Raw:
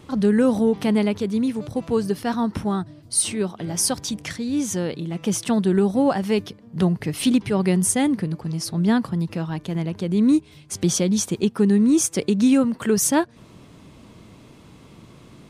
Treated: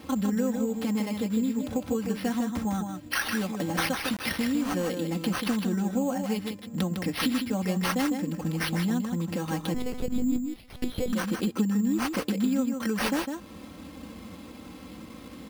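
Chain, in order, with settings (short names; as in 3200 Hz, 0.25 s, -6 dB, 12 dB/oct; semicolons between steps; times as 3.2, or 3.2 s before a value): HPF 46 Hz 24 dB/oct; comb 3.8 ms, depth 94%; compressor 6:1, threshold -26 dBFS, peak gain reduction 17 dB; 4–4.47 requantised 6-bit, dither none; echo 0.155 s -6 dB; 9.74–11.13 monotone LPC vocoder at 8 kHz 250 Hz; careless resampling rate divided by 6×, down none, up hold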